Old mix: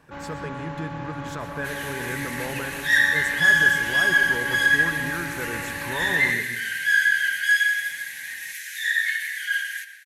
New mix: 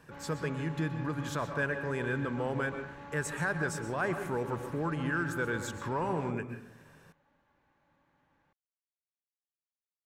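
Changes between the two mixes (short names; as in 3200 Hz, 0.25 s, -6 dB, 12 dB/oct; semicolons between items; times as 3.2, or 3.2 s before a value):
first sound -11.0 dB; second sound: muted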